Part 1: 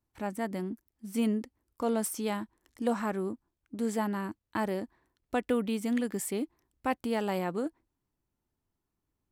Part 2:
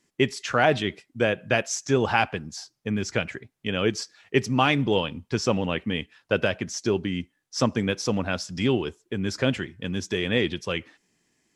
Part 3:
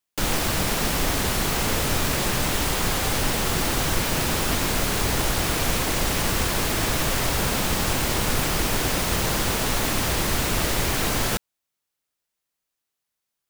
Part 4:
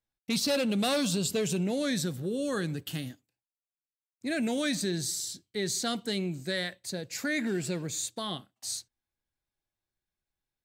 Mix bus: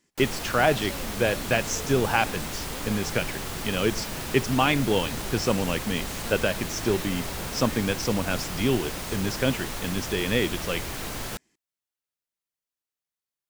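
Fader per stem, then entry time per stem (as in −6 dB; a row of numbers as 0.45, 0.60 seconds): −14.5, −1.0, −10.0, −13.0 decibels; 0.00, 0.00, 0.00, 0.40 seconds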